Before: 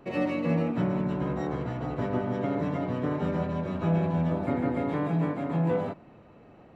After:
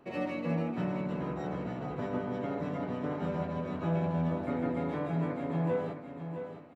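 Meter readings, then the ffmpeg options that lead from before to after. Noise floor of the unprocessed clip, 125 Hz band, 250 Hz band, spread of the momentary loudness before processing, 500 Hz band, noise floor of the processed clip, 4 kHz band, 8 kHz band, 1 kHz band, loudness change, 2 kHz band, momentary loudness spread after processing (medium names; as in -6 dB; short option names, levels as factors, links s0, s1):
-53 dBFS, -5.5 dB, -5.0 dB, 5 LU, -4.0 dB, -44 dBFS, -4.0 dB, no reading, -4.0 dB, -5.0 dB, -4.0 dB, 6 LU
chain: -filter_complex "[0:a]lowshelf=f=99:g=-8,asplit=2[s0][s1];[s1]adelay=12,volume=0.251[s2];[s0][s2]amix=inputs=2:normalize=0,aecho=1:1:665|1330|1995|2660:0.355|0.114|0.0363|0.0116,volume=0.562"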